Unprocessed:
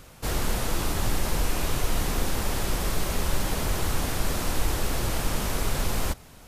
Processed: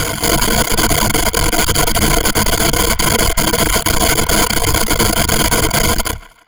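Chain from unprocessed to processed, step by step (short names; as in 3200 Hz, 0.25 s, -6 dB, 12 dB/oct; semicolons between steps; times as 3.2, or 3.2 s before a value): ending faded out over 1.74 s; half-wave rectifier; compressor 6:1, threshold -33 dBFS, peak gain reduction 14.5 dB; low shelf 130 Hz -6 dB; one-sided clip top -43 dBFS; ripple EQ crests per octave 1.8, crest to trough 13 dB; reverb removal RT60 0.52 s; band-limited delay 0.157 s, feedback 36%, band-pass 1500 Hz, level -17.5 dB; maximiser +36 dB; gain -1 dB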